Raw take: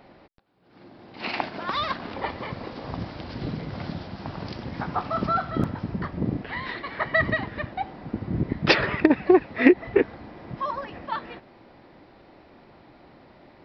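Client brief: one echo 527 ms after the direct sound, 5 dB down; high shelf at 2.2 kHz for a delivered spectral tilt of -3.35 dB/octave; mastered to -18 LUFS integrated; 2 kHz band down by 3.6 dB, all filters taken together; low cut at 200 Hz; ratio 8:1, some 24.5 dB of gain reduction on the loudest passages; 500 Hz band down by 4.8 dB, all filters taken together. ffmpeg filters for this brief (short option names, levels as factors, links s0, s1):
-af "highpass=200,equalizer=f=500:t=o:g=-7,equalizer=f=2000:t=o:g=-5.5,highshelf=f=2200:g=3.5,acompressor=threshold=0.01:ratio=8,aecho=1:1:527:0.562,volume=17.8"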